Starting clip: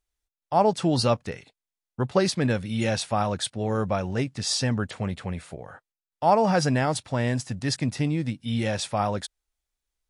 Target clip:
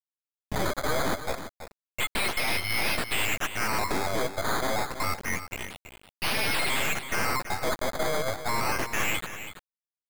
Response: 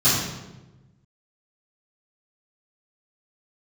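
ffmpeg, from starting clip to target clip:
-af "afftfilt=real='real(if(lt(b,920),b+92*(1-2*mod(floor(b/92),2)),b),0)':imag='imag(if(lt(b,920),b+92*(1-2*mod(floor(b/92),2)),b),0)':win_size=2048:overlap=0.75,afftfilt=real='re*gte(hypot(re,im),0.0112)':imag='im*gte(hypot(re,im),0.0112)':win_size=1024:overlap=0.75,equalizer=frequency=500:width_type=o:width=0.99:gain=10,acompressor=mode=upward:threshold=-36dB:ratio=2.5,tremolo=f=9.5:d=0.35,acrusher=samples=11:mix=1:aa=0.000001:lfo=1:lforange=11:lforate=0.28,aeval=exprs='0.0631*(abs(mod(val(0)/0.0631+3,4)-2)-1)':channel_layout=same,aeval=exprs='0.0668*(cos(1*acos(clip(val(0)/0.0668,-1,1)))-cos(1*PI/2))+0.0266*(cos(4*acos(clip(val(0)/0.0668,-1,1)))-cos(4*PI/2))+0.000596*(cos(5*acos(clip(val(0)/0.0668,-1,1)))-cos(5*PI/2))':channel_layout=same,acrusher=bits=5:mix=0:aa=0.000001,aecho=1:1:329:0.282"

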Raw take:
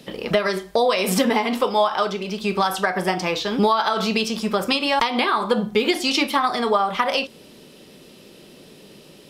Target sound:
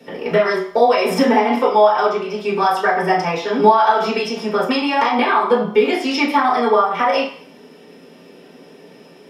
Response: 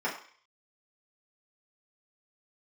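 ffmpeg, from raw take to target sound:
-filter_complex "[1:a]atrim=start_sample=2205[link_01];[0:a][link_01]afir=irnorm=-1:irlink=0,volume=-4.5dB"

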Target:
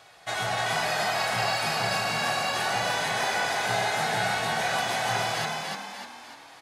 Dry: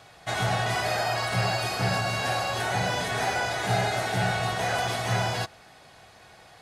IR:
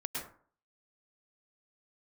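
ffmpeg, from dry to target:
-filter_complex "[0:a]lowshelf=frequency=300:gain=-12,asplit=7[link_01][link_02][link_03][link_04][link_05][link_06][link_07];[link_02]adelay=298,afreqshift=41,volume=-3dB[link_08];[link_03]adelay=596,afreqshift=82,volume=-9.7dB[link_09];[link_04]adelay=894,afreqshift=123,volume=-16.5dB[link_10];[link_05]adelay=1192,afreqshift=164,volume=-23.2dB[link_11];[link_06]adelay=1490,afreqshift=205,volume=-30dB[link_12];[link_07]adelay=1788,afreqshift=246,volume=-36.7dB[link_13];[link_01][link_08][link_09][link_10][link_11][link_12][link_13]amix=inputs=7:normalize=0"

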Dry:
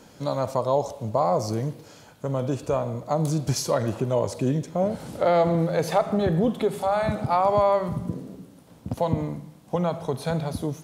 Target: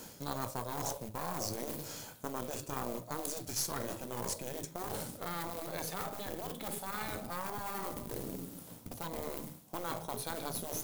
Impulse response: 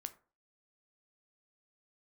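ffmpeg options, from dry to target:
-filter_complex "[1:a]atrim=start_sample=2205,asetrate=41013,aresample=44100[link_01];[0:a][link_01]afir=irnorm=-1:irlink=0,asplit=2[link_02][link_03];[link_03]acrusher=bits=3:mode=log:mix=0:aa=0.000001,volume=-7dB[link_04];[link_02][link_04]amix=inputs=2:normalize=0,aemphasis=mode=production:type=50fm,areverse,acompressor=threshold=-33dB:ratio=20,areverse,aeval=exprs='0.0944*(cos(1*acos(clip(val(0)/0.0944,-1,1)))-cos(1*PI/2))+0.00668*(cos(6*acos(clip(val(0)/0.0944,-1,1)))-cos(6*PI/2))+0.00473*(cos(7*acos(clip(val(0)/0.0944,-1,1)))-cos(7*PI/2))':channel_layout=same,afftfilt=real='re*lt(hypot(re,im),0.0631)':imag='im*lt(hypot(re,im),0.0631)':win_size=1024:overlap=0.75,volume=3.5dB"

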